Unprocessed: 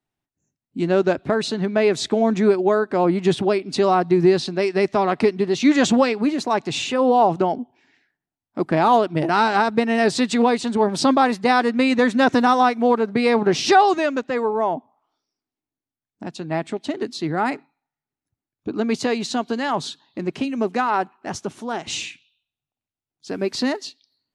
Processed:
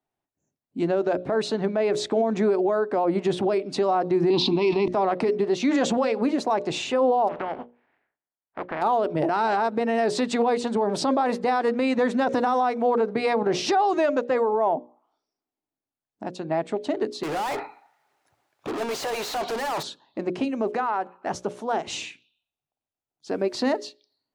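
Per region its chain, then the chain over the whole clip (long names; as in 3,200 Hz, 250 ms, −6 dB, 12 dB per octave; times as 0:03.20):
0:04.30–0:04.88: drawn EQ curve 120 Hz 0 dB, 280 Hz +15 dB, 600 Hz −8 dB, 980 Hz +15 dB, 1,600 Hz −17 dB, 2,300 Hz +9 dB, 3,500 Hz +13 dB, 12,000 Hz −20 dB + level that may fall only so fast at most 36 dB per second
0:07.27–0:08.81: compressing power law on the bin magnitudes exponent 0.42 + transistor ladder low-pass 2,500 Hz, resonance 30% + downward compressor 2.5 to 1, threshold −27 dBFS
0:17.23–0:19.83: parametric band 240 Hz −9.5 dB 1.1 octaves + mid-hump overdrive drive 33 dB, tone 3,700 Hz, clips at −11.5 dBFS + gain into a clipping stage and back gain 27.5 dB
0:20.74–0:21.30: parametric band 1,500 Hz +4.5 dB 1.9 octaves + downward compressor 4 to 1, threshold −24 dBFS
whole clip: parametric band 620 Hz +10 dB 2.1 octaves; mains-hum notches 60/120/180/240/300/360/420/480/540/600 Hz; brickwall limiter −8.5 dBFS; level −6 dB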